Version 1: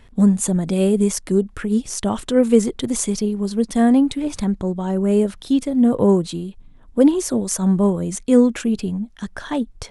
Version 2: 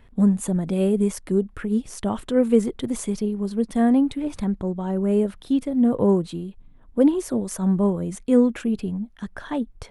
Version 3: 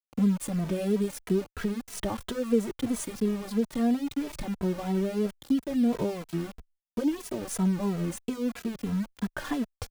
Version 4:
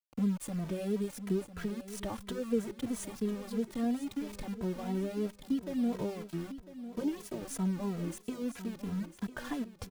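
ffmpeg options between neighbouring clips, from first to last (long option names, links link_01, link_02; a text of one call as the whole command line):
ffmpeg -i in.wav -af "equalizer=frequency=6300:width_type=o:width=1.6:gain=-9,volume=-3.5dB" out.wav
ffmpeg -i in.wav -filter_complex "[0:a]acompressor=threshold=-32dB:ratio=2.5,aeval=exprs='val(0)*gte(abs(val(0)),0.0112)':channel_layout=same,asplit=2[link_01][link_02];[link_02]adelay=2.7,afreqshift=-3[link_03];[link_01][link_03]amix=inputs=2:normalize=1,volume=6dB" out.wav
ffmpeg -i in.wav -af "aecho=1:1:1000|2000|3000:0.224|0.0672|0.0201,volume=-6.5dB" out.wav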